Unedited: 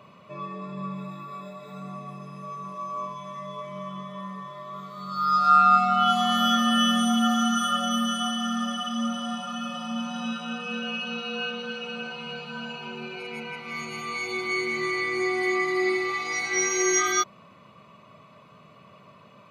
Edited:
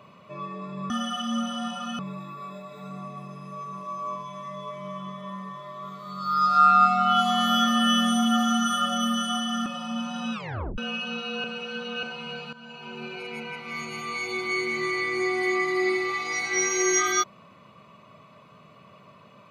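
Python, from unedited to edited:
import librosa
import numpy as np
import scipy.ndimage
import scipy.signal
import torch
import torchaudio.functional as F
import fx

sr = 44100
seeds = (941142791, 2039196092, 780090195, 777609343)

y = fx.edit(x, sr, fx.move(start_s=8.57, length_s=1.09, to_s=0.9),
    fx.tape_stop(start_s=10.33, length_s=0.45),
    fx.reverse_span(start_s=11.44, length_s=0.59),
    fx.fade_in_from(start_s=12.53, length_s=0.52, floor_db=-15.5), tone=tone)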